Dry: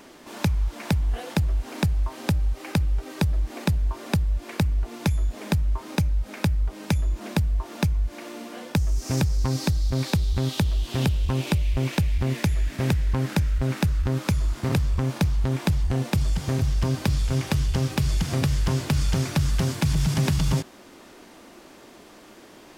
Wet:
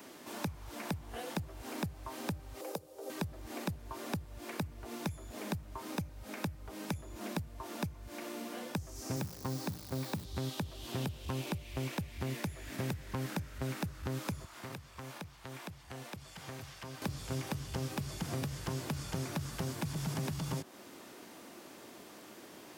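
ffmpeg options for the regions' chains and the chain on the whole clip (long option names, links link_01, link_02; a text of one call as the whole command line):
ffmpeg -i in.wav -filter_complex "[0:a]asettb=1/sr,asplit=3[link_01][link_02][link_03];[link_01]atrim=end=2.614[link_04];[link_02]atrim=start=2.61:end=3.1,asetpts=PTS-STARTPTS,afade=type=in:duration=0.004:curve=qsin,afade=type=out:start_time=0.486:duration=0.004:curve=qsin,highpass=frequency=490:width_type=q:width=4.3,equalizer=frequency=2100:width_type=o:width=1.9:gain=-13.5[link_05];[link_03]atrim=start=3.096[link_06];[link_04][link_05]acrossfade=duration=0.004:curve1=hsin:curve2=qsin[link_07];[link_07][link_06]acrossfade=duration=0.004:curve1=qsin:curve2=hsin,asettb=1/sr,asplit=3[link_08][link_09][link_10];[link_08]atrim=end=9.164[link_11];[link_09]atrim=start=9.16:end=10.25,asetpts=PTS-STARTPTS,afade=type=in:duration=0.004:curve=qsin,afade=type=out:start_time=1.086:duration=0.004:curve=qsin,highpass=100,bandreject=frequency=60:width_type=h:width=6,bandreject=frequency=120:width_type=h:width=6,bandreject=frequency=180:width_type=h:width=6,bandreject=frequency=240:width_type=h:width=6,bandreject=frequency=300:width_type=h:width=6,acrusher=bits=7:dc=4:mix=0:aa=0.000001[link_12];[link_10]atrim=start=10.246[link_13];[link_11][link_12]acrossfade=duration=0.004:curve1=hsin:curve2=qsin[link_14];[link_14][link_13]acrossfade=duration=0.004:curve1=qsin:curve2=hsin,asettb=1/sr,asplit=3[link_15][link_16][link_17];[link_15]atrim=end=14.444[link_18];[link_16]atrim=start=14.44:end=17.02,asetpts=PTS-STARTPTS,afade=type=in:duration=0.004:curve=qsin,afade=type=out:start_time=2.576:duration=0.004:curve=qsin,lowshelf=frequency=430:gain=-11.5,acrossover=split=520|3300[link_19][link_20][link_21];[link_19]acompressor=threshold=-41dB:ratio=4[link_22];[link_20]acompressor=threshold=-43dB:ratio=4[link_23];[link_21]acompressor=threshold=-55dB:ratio=4[link_24];[link_22][link_23][link_24]amix=inputs=3:normalize=0[link_25];[link_17]atrim=start=17.016[link_26];[link_18][link_25]acrossfade=duration=0.004:curve1=hsin:curve2=qsin[link_27];[link_27][link_26]acrossfade=duration=0.004:curve1=qsin:curve2=hsin,highpass=frequency=82:width=0.5412,highpass=frequency=82:width=1.3066,highshelf=frequency=11000:gain=10.5,acrossover=split=240|1500[link_28][link_29][link_30];[link_28]acompressor=threshold=-35dB:ratio=4[link_31];[link_29]acompressor=threshold=-35dB:ratio=4[link_32];[link_30]acompressor=threshold=-42dB:ratio=4[link_33];[link_31][link_32][link_33]amix=inputs=3:normalize=0,volume=-4.5dB" out.wav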